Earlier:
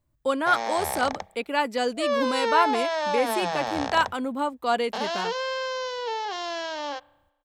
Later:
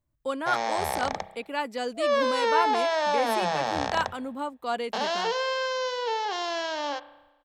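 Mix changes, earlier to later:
speech -5.5 dB; background: send +10.0 dB

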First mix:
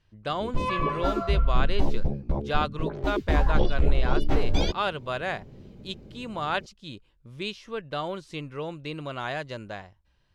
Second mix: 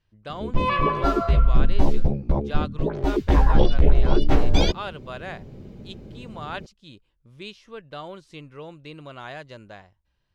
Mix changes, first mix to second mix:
speech -5.5 dB; background +5.5 dB

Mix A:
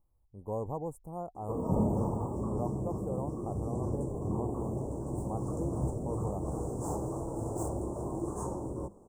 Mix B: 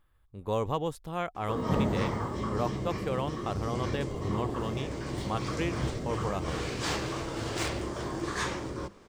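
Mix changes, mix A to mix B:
speech +4.5 dB; master: remove elliptic band-stop 880–8000 Hz, stop band 50 dB

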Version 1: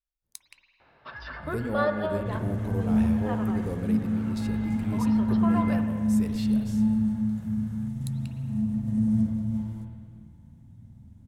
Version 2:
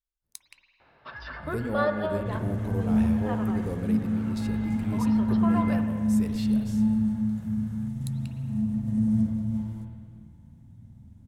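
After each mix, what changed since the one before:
none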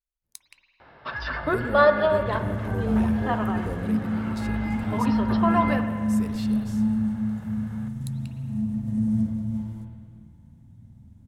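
first sound +9.0 dB

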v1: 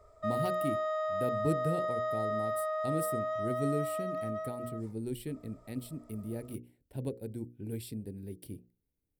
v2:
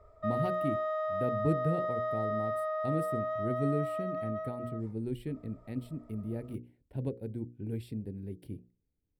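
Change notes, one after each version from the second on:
master: add tone controls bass +3 dB, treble -14 dB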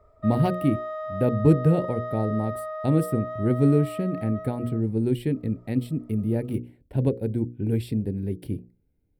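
speech +12.0 dB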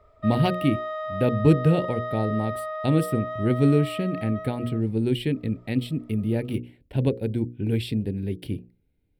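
master: add bell 3100 Hz +11.5 dB 1.4 oct

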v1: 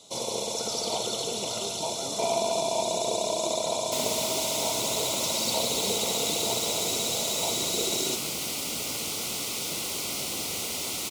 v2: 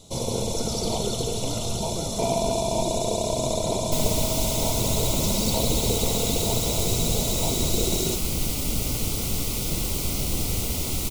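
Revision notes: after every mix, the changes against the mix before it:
speech: entry -0.60 s; master: remove weighting filter A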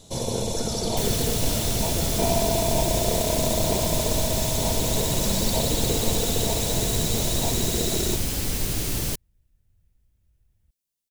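second sound: entry -2.95 s; master: remove Butterworth band-stop 1700 Hz, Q 3.2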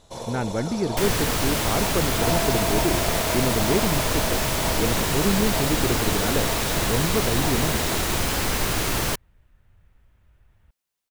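speech +7.0 dB; first sound -11.5 dB; master: add bell 1200 Hz +14.5 dB 2.4 oct

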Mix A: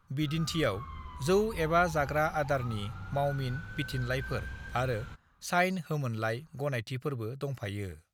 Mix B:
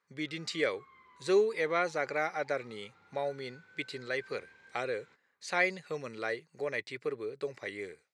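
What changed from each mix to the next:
background -10.0 dB; master: add speaker cabinet 380–7800 Hz, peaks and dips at 420 Hz +6 dB, 680 Hz -7 dB, 1300 Hz -7 dB, 2100 Hz +7 dB, 3000 Hz -6 dB, 6200 Hz -5 dB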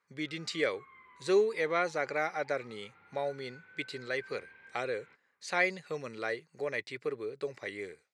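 background: add synth low-pass 2400 Hz, resonance Q 1.7

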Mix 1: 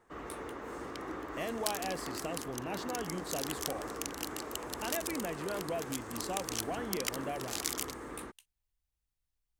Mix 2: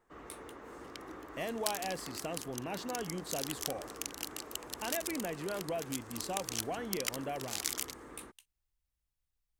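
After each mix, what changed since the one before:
first sound -6.5 dB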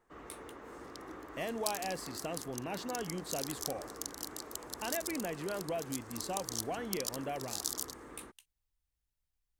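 second sound: add Chebyshev band-stop 1000–4200 Hz, order 2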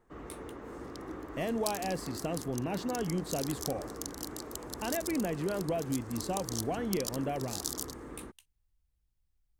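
master: add low shelf 440 Hz +10 dB

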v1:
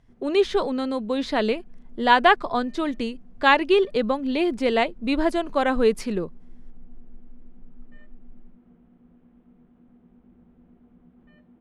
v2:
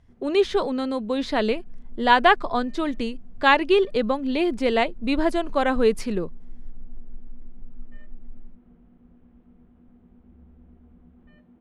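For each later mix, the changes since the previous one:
second sound +7.0 dB; master: add bell 73 Hz +15 dB 0.32 oct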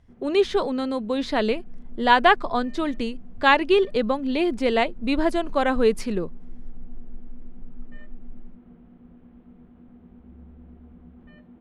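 first sound +5.5 dB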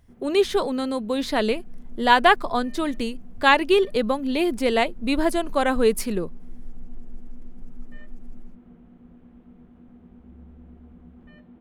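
second sound: remove air absorption 260 m; master: remove air absorption 78 m

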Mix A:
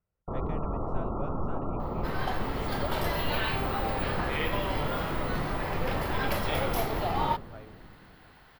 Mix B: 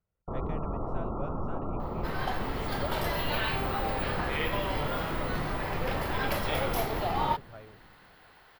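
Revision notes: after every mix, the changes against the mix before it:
first sound: send -8.0 dB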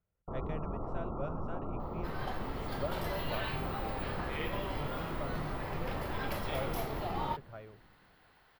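first sound -5.0 dB; second sound -8.0 dB

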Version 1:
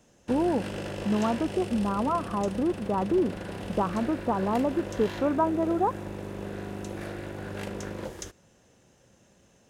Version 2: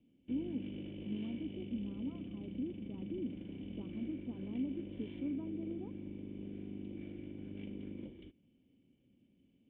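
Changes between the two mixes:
speech -8.0 dB; master: add vocal tract filter i

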